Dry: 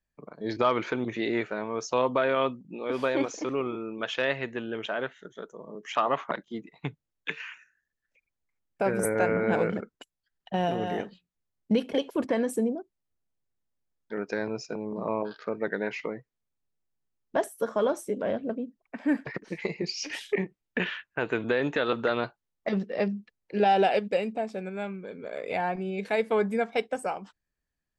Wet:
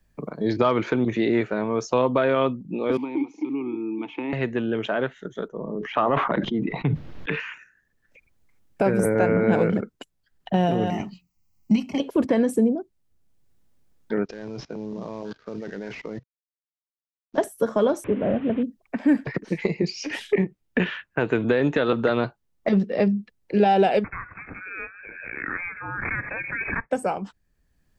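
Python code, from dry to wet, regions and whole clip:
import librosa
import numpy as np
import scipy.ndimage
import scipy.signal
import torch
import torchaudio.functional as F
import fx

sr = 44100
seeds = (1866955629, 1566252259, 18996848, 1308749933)

y = fx.chain(x, sr, fx.vowel_filter(vowel='u'),
    fx.band_squash(depth_pct=70), at=(2.97, 4.33))
y = fx.chain(y, sr, fx.air_absorb(metres=300.0),
    fx.sustainer(db_per_s=27.0), at=(5.48, 7.4))
y = fx.chain(y, sr, fx.high_shelf(hz=5300.0, db=10.5),
    fx.fixed_phaser(hz=2400.0, stages=8), at=(10.9, 12.0))
y = fx.chain(y, sr, fx.cvsd(bps=32000),
    fx.level_steps(step_db=23), at=(14.25, 17.38))
y = fx.chain(y, sr, fx.delta_mod(bps=16000, step_db=-39.0),
    fx.highpass(hz=66.0, slope=12),
    fx.air_absorb(metres=100.0), at=(18.04, 18.63))
y = fx.chain(y, sr, fx.brickwall_highpass(low_hz=1300.0),
    fx.freq_invert(carrier_hz=3900),
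    fx.pre_swell(db_per_s=41.0), at=(24.04, 26.91))
y = fx.low_shelf(y, sr, hz=390.0, db=9.5)
y = fx.band_squash(y, sr, depth_pct=40)
y = y * librosa.db_to_amplitude(2.0)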